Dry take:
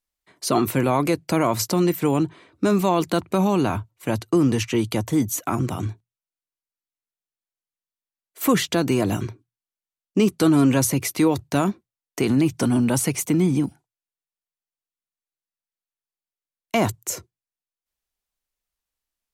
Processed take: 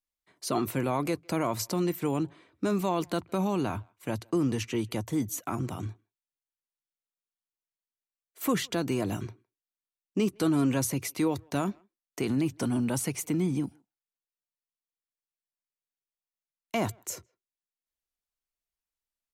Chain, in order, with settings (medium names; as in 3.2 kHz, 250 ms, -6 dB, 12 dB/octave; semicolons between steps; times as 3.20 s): speakerphone echo 160 ms, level -29 dB; trim -8.5 dB